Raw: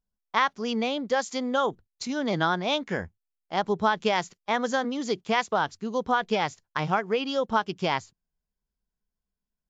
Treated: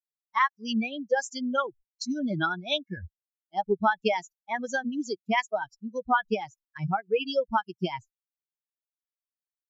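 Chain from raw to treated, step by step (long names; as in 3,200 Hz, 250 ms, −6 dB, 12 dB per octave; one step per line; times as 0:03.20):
spectral dynamics exaggerated over time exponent 3
de-essing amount 70%
level +5 dB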